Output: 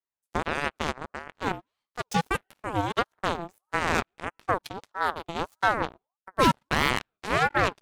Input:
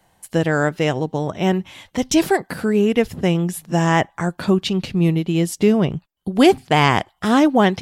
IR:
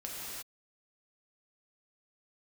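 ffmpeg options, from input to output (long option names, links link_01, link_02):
-filter_complex "[0:a]asplit=2[link_01][link_02];[1:a]atrim=start_sample=2205,asetrate=83790,aresample=44100[link_03];[link_02][link_03]afir=irnorm=-1:irlink=0,volume=-13dB[link_04];[link_01][link_04]amix=inputs=2:normalize=0,aeval=exprs='0.891*(cos(1*acos(clip(val(0)/0.891,-1,1)))-cos(1*PI/2))+0.00891*(cos(3*acos(clip(val(0)/0.891,-1,1)))-cos(3*PI/2))+0.126*(cos(7*acos(clip(val(0)/0.891,-1,1)))-cos(7*PI/2))':channel_layout=same,aeval=exprs='val(0)*sin(2*PI*830*n/s+830*0.4/1.6*sin(2*PI*1.6*n/s))':channel_layout=same,volume=-6dB"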